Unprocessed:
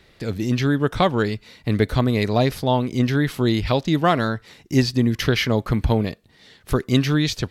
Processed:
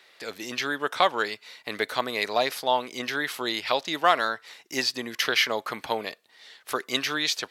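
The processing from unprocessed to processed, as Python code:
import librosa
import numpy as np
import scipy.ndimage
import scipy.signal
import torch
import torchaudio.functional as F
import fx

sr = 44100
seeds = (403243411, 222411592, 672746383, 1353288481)

y = scipy.signal.sosfilt(scipy.signal.butter(2, 720.0, 'highpass', fs=sr, output='sos'), x)
y = y * librosa.db_to_amplitude(1.0)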